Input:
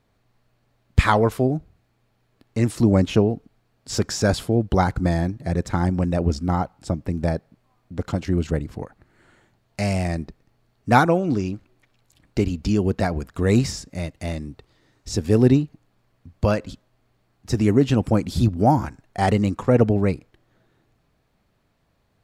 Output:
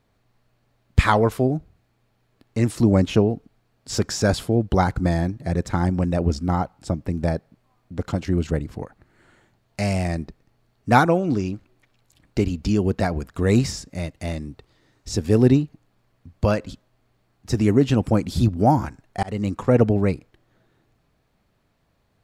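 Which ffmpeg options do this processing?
-filter_complex "[0:a]asplit=2[s0][s1];[s0]atrim=end=19.23,asetpts=PTS-STARTPTS,afade=t=out:st=19.226:d=0.004:c=hsin[s2];[s1]atrim=start=19.23,asetpts=PTS-STARTPTS,afade=t=in:d=0.45:c=qsin[s3];[s2][s3]concat=n=2:v=0:a=1"

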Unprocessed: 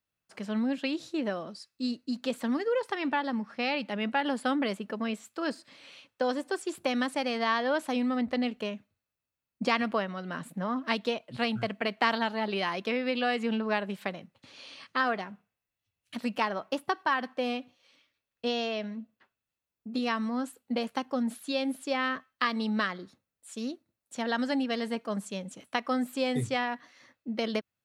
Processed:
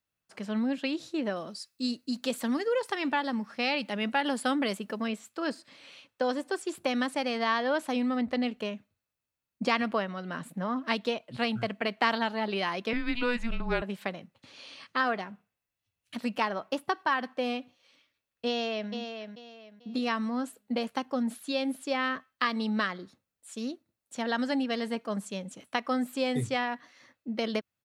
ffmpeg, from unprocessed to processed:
-filter_complex "[0:a]asettb=1/sr,asplit=3[s0][s1][s2];[s0]atrim=end=1.364[s3];[s1]atrim=start=1.36:end=5.08,asetpts=PTS-STARTPTS,afade=t=in:d=0.004:c=qsin,afade=t=out:st=3.716:d=0.004:c=qsin,highshelf=f=5100:g=10[s4];[s2]atrim=start=5.076[s5];[s3][s4]acrossfade=d=0.004:c1=hsin:c2=qsin[s6];[s6][s5]acrossfade=d=0.004:c1=qsin:c2=hsin,asettb=1/sr,asplit=3[s7][s8][s9];[s7]atrim=end=12.934[s10];[s8]atrim=start=12.93:end=13.82,asetpts=PTS-STARTPTS,afade=t=in:d=0.004:c=qsin,afade=t=out:st=0.886:d=0.004:c=qsin,afreqshift=-240[s11];[s9]atrim=start=13.816[s12];[s10][s11]acrossfade=d=0.004:c1=hsin:c2=qsin[s13];[s13][s12]acrossfade=d=0.004:c1=qsin:c2=hsin,asplit=2[s14][s15];[s15]afade=t=in:st=18.48:d=0.01,afade=t=out:st=18.91:d=0.01,aecho=0:1:440|880|1320|1760:0.421697|0.126509|0.0379527|0.0113858[s16];[s14][s16]amix=inputs=2:normalize=0"

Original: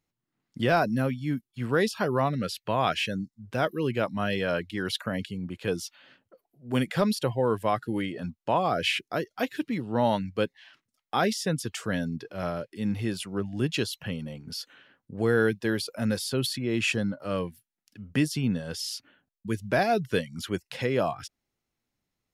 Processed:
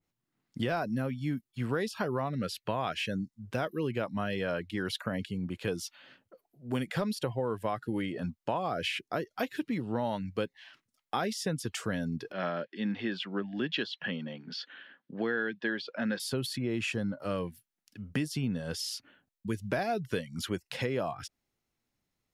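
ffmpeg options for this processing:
-filter_complex "[0:a]asettb=1/sr,asplit=3[s0][s1][s2];[s0]atrim=end=12.324[s3];[s1]atrim=start=12.32:end=16.2,asetpts=PTS-STARTPTS,afade=t=in:d=0.004:c=qsin,afade=t=out:st=3.876:d=0.004:c=qsin,highpass=f=180:w=0.5412,highpass=f=180:w=1.3066,equalizer=f=440:t=q:w=4:g=-3,equalizer=f=1700:t=q:w=4:g=9,equalizer=f=3300:t=q:w=4:g=6,lowpass=f=4500:w=0.5412,lowpass=f=4500:w=1.3066[s4];[s2]atrim=start=16.196[s5];[s3][s4]acrossfade=d=0.004:c1=hsin:c2=qsin[s6];[s6][s5]acrossfade=d=0.004:c1=qsin:c2=hsin,acompressor=threshold=0.0398:ratio=5,adynamicequalizer=threshold=0.00562:dfrequency=2200:dqfactor=0.7:tfrequency=2200:tqfactor=0.7:attack=5:release=100:ratio=0.375:range=2:mode=cutabove:tftype=highshelf"

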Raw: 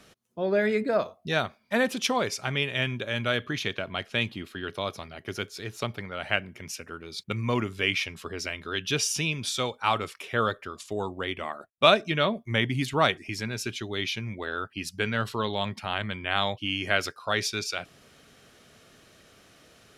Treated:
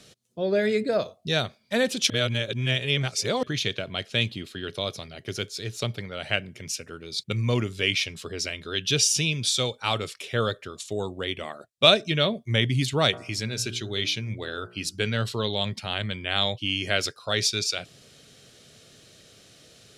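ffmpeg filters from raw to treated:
-filter_complex "[0:a]asettb=1/sr,asplit=3[s0][s1][s2];[s0]atrim=end=10.634[s3];[s1]atrim=start=10.63:end=11.41,asetpts=PTS-STARTPTS,afade=t=in:d=0.004:c=qsin,afade=t=out:st=0.776:d=0.004:c=qsin,bandreject=f=4800:w=12[s4];[s2]atrim=start=11.406[s5];[s3][s4]acrossfade=d=0.004:c1=hsin:c2=qsin[s6];[s6][s5]acrossfade=d=0.004:c1=qsin:c2=hsin,asplit=3[s7][s8][s9];[s7]afade=t=out:st=13.12:d=0.02[s10];[s8]bandreject=f=59.68:t=h:w=4,bandreject=f=119.36:t=h:w=4,bandreject=f=179.04:t=h:w=4,bandreject=f=238.72:t=h:w=4,bandreject=f=298.4:t=h:w=4,bandreject=f=358.08:t=h:w=4,bandreject=f=417.76:t=h:w=4,bandreject=f=477.44:t=h:w=4,bandreject=f=537.12:t=h:w=4,bandreject=f=596.8:t=h:w=4,bandreject=f=656.48:t=h:w=4,bandreject=f=716.16:t=h:w=4,bandreject=f=775.84:t=h:w=4,bandreject=f=835.52:t=h:w=4,bandreject=f=895.2:t=h:w=4,bandreject=f=954.88:t=h:w=4,bandreject=f=1014.56:t=h:w=4,bandreject=f=1074.24:t=h:w=4,bandreject=f=1133.92:t=h:w=4,bandreject=f=1193.6:t=h:w=4,bandreject=f=1253.28:t=h:w=4,bandreject=f=1312.96:t=h:w=4,bandreject=f=1372.64:t=h:w=4,bandreject=f=1432.32:t=h:w=4,bandreject=f=1492:t=h:w=4,bandreject=f=1551.68:t=h:w=4,bandreject=f=1611.36:t=h:w=4,afade=t=in:st=13.12:d=0.02,afade=t=out:st=14.95:d=0.02[s11];[s9]afade=t=in:st=14.95:d=0.02[s12];[s10][s11][s12]amix=inputs=3:normalize=0,asplit=3[s13][s14][s15];[s13]atrim=end=2.102[s16];[s14]atrim=start=2.098:end=3.432,asetpts=PTS-STARTPTS,areverse[s17];[s15]atrim=start=3.428[s18];[s16][s17]acrossfade=d=0.004:c1=hsin:c2=hsin[s19];[s19][s18]acrossfade=d=0.004:c1=hsin:c2=hsin,equalizer=f=125:t=o:w=1:g=8,equalizer=f=500:t=o:w=1:g=5,equalizer=f=1000:t=o:w=1:g=-5,equalizer=f=4000:t=o:w=1:g=8,equalizer=f=8000:t=o:w=1:g=8,volume=0.794"

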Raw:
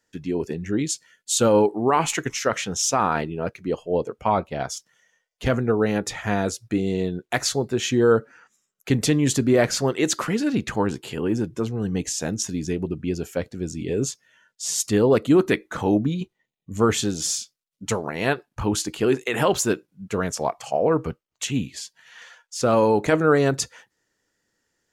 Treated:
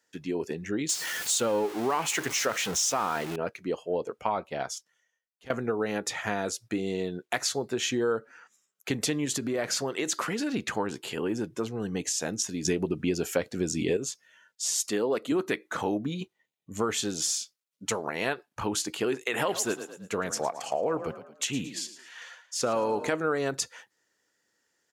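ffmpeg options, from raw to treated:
-filter_complex "[0:a]asettb=1/sr,asplit=3[s0][s1][s2];[s0]atrim=end=0.894[s3];[s1]atrim=start=0.89:end=3.36,asetpts=PTS-STARTPTS,afade=t=in:d=0.004:c=qsin,afade=t=out:st=2.466:d=0.004:c=qsin,aeval=exprs='val(0)+0.5*0.0447*sgn(val(0))':c=same[s4];[s2]atrim=start=3.356[s5];[s3][s4]acrossfade=d=0.004:c1=hsin:c2=qsin[s6];[s6][s5]acrossfade=d=0.004:c1=qsin:c2=hsin,asettb=1/sr,asplit=3[s7][s8][s9];[s7]atrim=end=9.254[s10];[s8]atrim=start=9.25:end=10.53,asetpts=PTS-STARTPTS,afade=t=in:d=0.004:c=qsin,afade=t=out:st=1.276:d=0.004:c=qsin,acompressor=threshold=0.1:ratio=6:attack=3.2:release=140:knee=1:detection=peak[s11];[s9]atrim=start=10.526[s12];[s10][s11]acrossfade=d=0.004:c1=hsin:c2=qsin[s13];[s13][s12]acrossfade=d=0.004:c1=qsin:c2=hsin,asettb=1/sr,asplit=3[s14][s15][s16];[s14]atrim=end=14.764[s17];[s15]atrim=start=14.76:end=15.32,asetpts=PTS-STARTPTS,afade=t=in:d=0.004:c=qsin,afade=t=out:st=0.556:d=0.004:c=qsin,highpass=200[s18];[s16]atrim=start=15.316[s19];[s17][s18]acrossfade=d=0.004:c1=hsin:c2=qsin[s20];[s20][s19]acrossfade=d=0.004:c1=qsin:c2=hsin,asplit=3[s21][s22][s23];[s21]afade=t=out:st=19.38:d=0.02[s24];[s22]asplit=5[s25][s26][s27][s28][s29];[s26]adelay=111,afreqshift=30,volume=0.2[s30];[s27]adelay=222,afreqshift=60,volume=0.0759[s31];[s28]adelay=333,afreqshift=90,volume=0.0288[s32];[s29]adelay=444,afreqshift=120,volume=0.011[s33];[s25][s30][s31][s32][s33]amix=inputs=5:normalize=0,afade=t=in:st=19.38:d=0.02,afade=t=out:st=23.08:d=0.02[s34];[s23]afade=t=in:st=23.08:d=0.02[s35];[s24][s34][s35]amix=inputs=3:normalize=0,asplit=4[s36][s37][s38][s39];[s36]atrim=end=5.5,asetpts=PTS-STARTPTS,afade=t=out:st=4.48:d=1.02:c=qua:silence=0.1[s40];[s37]atrim=start=5.5:end=12.652,asetpts=PTS-STARTPTS,afade=t=in:d=0.004:c=hsin:silence=0.1[s41];[s38]atrim=start=12.648:end=13.972,asetpts=PTS-STARTPTS,volume=3.35[s42];[s39]atrim=start=13.968[s43];[s40][s41]concat=n=2:v=0:a=1[s44];[s44][s42]acrossfade=d=0.004:c1=hsin:c2=hsin[s45];[s45][s43]acrossfade=d=0.004:c1=hsin:c2=hsin,highpass=f=130:p=1,lowshelf=f=270:g=-8,acompressor=threshold=0.0501:ratio=3"

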